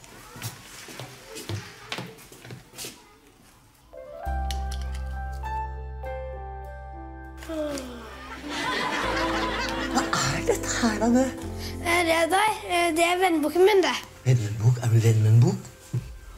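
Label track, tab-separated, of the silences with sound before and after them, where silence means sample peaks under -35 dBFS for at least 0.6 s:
2.920000	3.950000	silence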